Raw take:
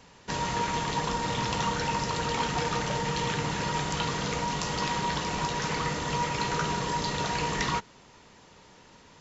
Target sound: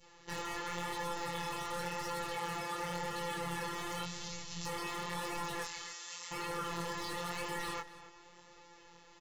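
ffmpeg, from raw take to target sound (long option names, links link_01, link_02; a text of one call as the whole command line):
ffmpeg -i in.wav -filter_complex "[0:a]asettb=1/sr,asplit=3[link_01][link_02][link_03];[link_01]atrim=end=2.354[link_04];[link_02]atrim=start=2.35:end=2.94,asetpts=PTS-STARTPTS,afade=type=in:duration=0.004:curve=qsin,afade=type=out:start_time=0.586:duration=0.004:curve=qsin,highpass=81[link_05];[link_03]atrim=start=2.936[link_06];[link_04][link_05]acrossfade=duration=0.004:curve1=hsin:curve2=qsin[link_07];[link_07][link_06]acrossfade=duration=0.004:curve1=qsin:curve2=hsin,asettb=1/sr,asplit=3[link_08][link_09][link_10];[link_08]atrim=end=5.644[link_11];[link_09]atrim=start=5.64:end=6.32,asetpts=PTS-STARTPTS,afade=type=in:duration=0.004:curve=qsin,afade=type=out:start_time=0.676:duration=0.004:curve=qsin,aderivative[link_12];[link_10]atrim=start=6.316[link_13];[link_11][link_12]acrossfade=duration=0.004:curve1=hsin:curve2=qsin[link_14];[link_14][link_13]acrossfade=duration=0.004:curve1=qsin:curve2=hsin,aecho=1:1:2.3:0.7,adynamicequalizer=threshold=0.0141:dfrequency=1200:dqfactor=0.76:tfrequency=1200:tqfactor=0.76:attack=5:release=100:ratio=0.375:range=2:mode=boostabove:tftype=bell,alimiter=limit=-21.5dB:level=0:latency=1:release=12,asettb=1/sr,asplit=3[link_15][link_16][link_17];[link_15]atrim=end=4.034[link_18];[link_16]atrim=start=4.03:end=4.66,asetpts=PTS-STARTPTS,afade=type=in:duration=0.004:curve=qsin,afade=type=out:start_time=0.626:duration=0.004:curve=qsin,acrossover=split=210|3000[link_19][link_20][link_21];[link_20]acompressor=threshold=-57dB:ratio=2[link_22];[link_19][link_22][link_21]amix=inputs=3:normalize=0[link_23];[link_17]atrim=start=4.656[link_24];[link_18][link_23]acrossfade=duration=0.004:curve1=hsin:curve2=qsin[link_25];[link_25][link_24]acrossfade=duration=0.004:curve1=qsin:curve2=hsin,afftfilt=real='hypot(re,im)*cos(PI*b)':imag='0':win_size=1024:overlap=0.75,aeval=exprs='0.0891*(abs(mod(val(0)/0.0891+3,4)-2)-1)':channel_layout=same,flanger=delay=19.5:depth=6.9:speed=0.92,asplit=2[link_26][link_27];[link_27]adelay=268.2,volume=-15dB,highshelf=frequency=4000:gain=-6.04[link_28];[link_26][link_28]amix=inputs=2:normalize=0" out.wav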